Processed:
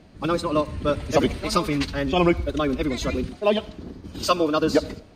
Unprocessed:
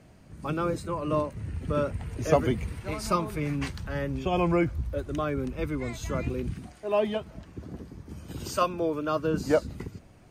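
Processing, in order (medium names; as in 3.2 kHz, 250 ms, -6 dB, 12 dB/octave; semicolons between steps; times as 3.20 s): graphic EQ 125/250/4000 Hz -6/+4/+12 dB; time stretch by phase-locked vocoder 0.5×; reverberation RT60 0.65 s, pre-delay 57 ms, DRR 19 dB; loudness maximiser +11.5 dB; tape noise reduction on one side only decoder only; trim -5.5 dB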